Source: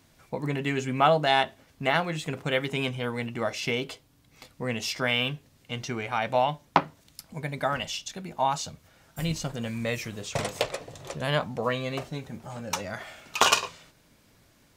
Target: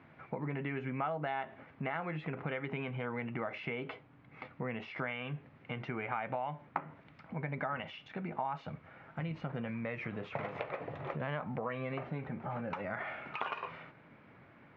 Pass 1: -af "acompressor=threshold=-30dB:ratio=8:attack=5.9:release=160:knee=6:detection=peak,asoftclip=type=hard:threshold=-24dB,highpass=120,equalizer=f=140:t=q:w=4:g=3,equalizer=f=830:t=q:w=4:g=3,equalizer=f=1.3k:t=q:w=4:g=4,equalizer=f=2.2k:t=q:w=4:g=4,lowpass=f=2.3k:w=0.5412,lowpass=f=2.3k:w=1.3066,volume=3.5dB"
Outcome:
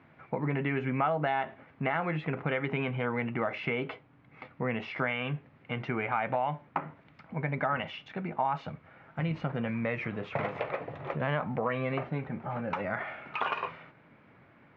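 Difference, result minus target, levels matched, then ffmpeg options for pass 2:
compressor: peak gain reduction -7.5 dB
-af "acompressor=threshold=-38.5dB:ratio=8:attack=5.9:release=160:knee=6:detection=peak,asoftclip=type=hard:threshold=-24dB,highpass=120,equalizer=f=140:t=q:w=4:g=3,equalizer=f=830:t=q:w=4:g=3,equalizer=f=1.3k:t=q:w=4:g=4,equalizer=f=2.2k:t=q:w=4:g=4,lowpass=f=2.3k:w=0.5412,lowpass=f=2.3k:w=1.3066,volume=3.5dB"

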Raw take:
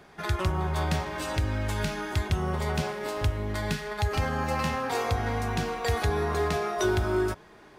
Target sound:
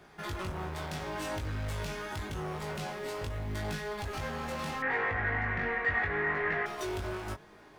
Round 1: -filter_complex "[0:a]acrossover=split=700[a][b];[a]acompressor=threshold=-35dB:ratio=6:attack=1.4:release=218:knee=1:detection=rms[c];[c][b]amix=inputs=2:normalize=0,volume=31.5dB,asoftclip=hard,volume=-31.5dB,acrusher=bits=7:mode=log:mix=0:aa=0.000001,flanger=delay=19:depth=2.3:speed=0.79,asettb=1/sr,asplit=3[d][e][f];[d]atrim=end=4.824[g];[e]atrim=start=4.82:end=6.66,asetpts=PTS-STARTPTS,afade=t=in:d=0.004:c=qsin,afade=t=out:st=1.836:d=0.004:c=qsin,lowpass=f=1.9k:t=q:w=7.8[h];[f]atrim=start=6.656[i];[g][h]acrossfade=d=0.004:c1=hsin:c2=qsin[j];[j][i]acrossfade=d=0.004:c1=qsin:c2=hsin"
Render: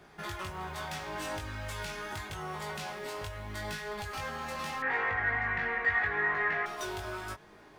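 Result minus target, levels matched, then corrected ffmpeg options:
compressor: peak gain reduction +10 dB
-filter_complex "[0:a]acrossover=split=700[a][b];[a]acompressor=threshold=-23dB:ratio=6:attack=1.4:release=218:knee=1:detection=rms[c];[c][b]amix=inputs=2:normalize=0,volume=31.5dB,asoftclip=hard,volume=-31.5dB,acrusher=bits=7:mode=log:mix=0:aa=0.000001,flanger=delay=19:depth=2.3:speed=0.79,asettb=1/sr,asplit=3[d][e][f];[d]atrim=end=4.824[g];[e]atrim=start=4.82:end=6.66,asetpts=PTS-STARTPTS,afade=t=in:d=0.004:c=qsin,afade=t=out:st=1.836:d=0.004:c=qsin,lowpass=f=1.9k:t=q:w=7.8[h];[f]atrim=start=6.656[i];[g][h]acrossfade=d=0.004:c1=hsin:c2=qsin[j];[j][i]acrossfade=d=0.004:c1=qsin:c2=hsin"

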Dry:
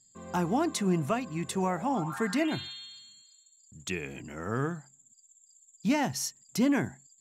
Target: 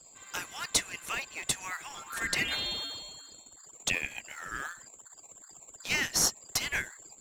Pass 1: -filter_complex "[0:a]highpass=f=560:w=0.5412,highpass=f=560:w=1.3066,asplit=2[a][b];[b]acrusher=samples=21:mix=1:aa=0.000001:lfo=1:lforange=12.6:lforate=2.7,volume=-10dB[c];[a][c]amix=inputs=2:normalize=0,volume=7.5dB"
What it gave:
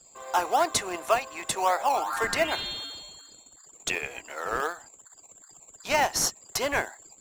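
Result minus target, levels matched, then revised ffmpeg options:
500 Hz band +12.5 dB
-filter_complex "[0:a]highpass=f=1.7k:w=0.5412,highpass=f=1.7k:w=1.3066,asplit=2[a][b];[b]acrusher=samples=21:mix=1:aa=0.000001:lfo=1:lforange=12.6:lforate=2.7,volume=-10dB[c];[a][c]amix=inputs=2:normalize=0,volume=7.5dB"

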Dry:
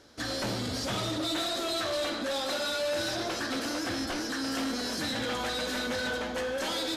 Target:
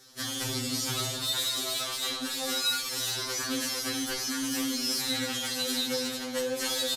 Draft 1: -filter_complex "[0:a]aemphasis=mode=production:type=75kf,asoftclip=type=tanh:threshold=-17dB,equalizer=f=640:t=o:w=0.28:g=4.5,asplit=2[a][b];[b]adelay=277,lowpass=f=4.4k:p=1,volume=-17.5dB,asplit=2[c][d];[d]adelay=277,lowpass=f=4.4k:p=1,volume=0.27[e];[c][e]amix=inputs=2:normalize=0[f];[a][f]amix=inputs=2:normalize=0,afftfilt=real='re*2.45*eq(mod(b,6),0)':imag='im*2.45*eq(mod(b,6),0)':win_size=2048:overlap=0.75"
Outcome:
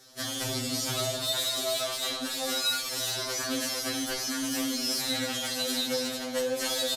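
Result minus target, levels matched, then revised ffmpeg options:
500 Hz band +3.0 dB
-filter_complex "[0:a]aemphasis=mode=production:type=75kf,asoftclip=type=tanh:threshold=-17dB,equalizer=f=640:t=o:w=0.28:g=-7,asplit=2[a][b];[b]adelay=277,lowpass=f=4.4k:p=1,volume=-17.5dB,asplit=2[c][d];[d]adelay=277,lowpass=f=4.4k:p=1,volume=0.27[e];[c][e]amix=inputs=2:normalize=0[f];[a][f]amix=inputs=2:normalize=0,afftfilt=real='re*2.45*eq(mod(b,6),0)':imag='im*2.45*eq(mod(b,6),0)':win_size=2048:overlap=0.75"

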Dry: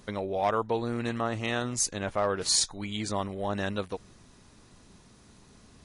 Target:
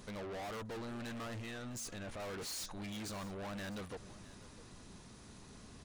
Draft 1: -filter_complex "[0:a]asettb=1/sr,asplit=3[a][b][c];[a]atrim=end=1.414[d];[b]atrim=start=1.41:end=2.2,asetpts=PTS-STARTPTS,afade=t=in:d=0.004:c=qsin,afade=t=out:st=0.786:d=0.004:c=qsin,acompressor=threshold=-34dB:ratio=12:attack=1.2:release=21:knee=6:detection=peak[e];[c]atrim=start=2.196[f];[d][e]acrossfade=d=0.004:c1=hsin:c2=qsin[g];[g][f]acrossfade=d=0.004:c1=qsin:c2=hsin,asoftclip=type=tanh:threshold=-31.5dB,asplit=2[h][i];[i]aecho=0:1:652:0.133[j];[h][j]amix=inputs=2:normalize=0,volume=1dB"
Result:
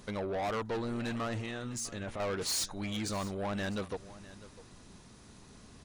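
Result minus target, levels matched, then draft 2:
soft clip: distortion -5 dB
-filter_complex "[0:a]asettb=1/sr,asplit=3[a][b][c];[a]atrim=end=1.414[d];[b]atrim=start=1.41:end=2.2,asetpts=PTS-STARTPTS,afade=t=in:d=0.004:c=qsin,afade=t=out:st=0.786:d=0.004:c=qsin,acompressor=threshold=-34dB:ratio=12:attack=1.2:release=21:knee=6:detection=peak[e];[c]atrim=start=2.196[f];[d][e]acrossfade=d=0.004:c1=hsin:c2=qsin[g];[g][f]acrossfade=d=0.004:c1=qsin:c2=hsin,asoftclip=type=tanh:threshold=-43dB,asplit=2[h][i];[i]aecho=0:1:652:0.133[j];[h][j]amix=inputs=2:normalize=0,volume=1dB"

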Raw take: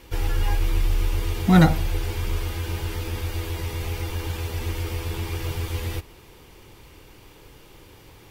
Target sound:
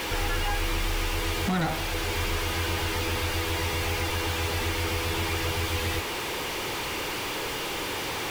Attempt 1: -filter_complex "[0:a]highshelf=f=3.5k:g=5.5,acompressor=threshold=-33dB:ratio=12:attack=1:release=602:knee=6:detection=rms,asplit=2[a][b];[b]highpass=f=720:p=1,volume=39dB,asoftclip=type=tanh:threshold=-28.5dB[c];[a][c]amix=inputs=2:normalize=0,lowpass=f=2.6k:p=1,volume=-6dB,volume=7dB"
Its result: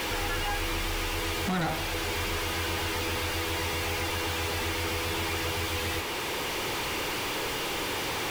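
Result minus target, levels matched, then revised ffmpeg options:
compressor: peak gain reduction +7.5 dB
-filter_complex "[0:a]highshelf=f=3.5k:g=5.5,acompressor=threshold=-25dB:ratio=12:attack=1:release=602:knee=6:detection=rms,asplit=2[a][b];[b]highpass=f=720:p=1,volume=39dB,asoftclip=type=tanh:threshold=-28.5dB[c];[a][c]amix=inputs=2:normalize=0,lowpass=f=2.6k:p=1,volume=-6dB,volume=7dB"

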